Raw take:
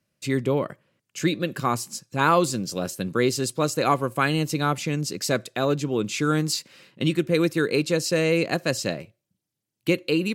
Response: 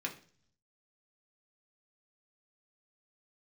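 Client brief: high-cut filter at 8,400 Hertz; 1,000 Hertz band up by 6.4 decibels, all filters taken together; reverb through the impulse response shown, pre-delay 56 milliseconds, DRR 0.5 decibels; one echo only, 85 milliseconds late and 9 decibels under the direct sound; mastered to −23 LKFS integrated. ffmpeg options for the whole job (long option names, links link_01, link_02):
-filter_complex "[0:a]lowpass=8400,equalizer=frequency=1000:width_type=o:gain=8,aecho=1:1:85:0.355,asplit=2[link_01][link_02];[1:a]atrim=start_sample=2205,adelay=56[link_03];[link_02][link_03]afir=irnorm=-1:irlink=0,volume=-2.5dB[link_04];[link_01][link_04]amix=inputs=2:normalize=0,volume=-3.5dB"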